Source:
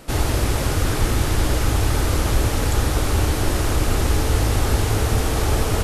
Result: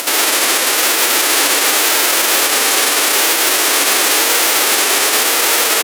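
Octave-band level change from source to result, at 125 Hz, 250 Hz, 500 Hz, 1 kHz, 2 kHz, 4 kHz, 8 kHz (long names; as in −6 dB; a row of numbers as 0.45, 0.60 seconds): below −30 dB, −1.0 dB, +5.0 dB, +9.5 dB, +15.0 dB, +16.5 dB, +17.0 dB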